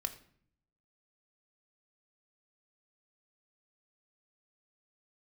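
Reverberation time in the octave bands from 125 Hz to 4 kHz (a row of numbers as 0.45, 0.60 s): 1.0, 0.85, 0.60, 0.55, 0.55, 0.45 s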